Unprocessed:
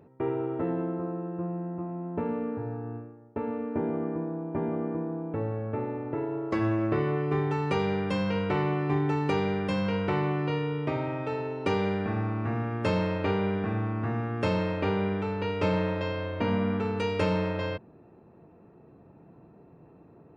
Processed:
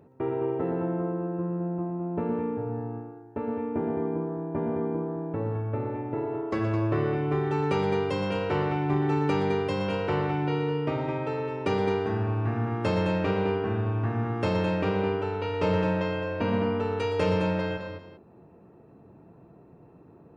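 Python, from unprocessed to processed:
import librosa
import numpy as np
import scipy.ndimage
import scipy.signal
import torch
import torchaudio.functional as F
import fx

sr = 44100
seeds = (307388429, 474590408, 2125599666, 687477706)

p1 = fx.peak_eq(x, sr, hz=2200.0, db=-2.0, octaves=0.77)
y = p1 + fx.echo_multitap(p1, sr, ms=(111, 120, 212, 398), db=(-17.0, -9.5, -7.0, -17.5), dry=0)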